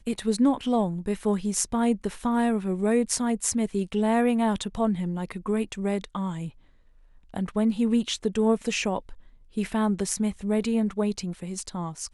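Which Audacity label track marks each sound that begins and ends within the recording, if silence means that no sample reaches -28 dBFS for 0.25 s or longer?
7.340000	8.980000	sound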